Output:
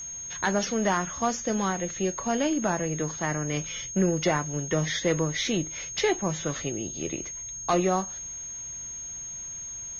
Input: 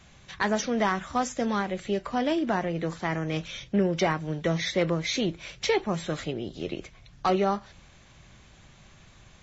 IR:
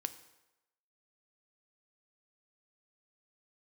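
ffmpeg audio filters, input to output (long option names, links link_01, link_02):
-af "asetrate=41586,aresample=44100,aeval=exprs='0.211*(cos(1*acos(clip(val(0)/0.211,-1,1)))-cos(1*PI/2))+0.00211*(cos(8*acos(clip(val(0)/0.211,-1,1)))-cos(8*PI/2))':channel_layout=same,aeval=exprs='val(0)+0.0178*sin(2*PI*6500*n/s)':channel_layout=same"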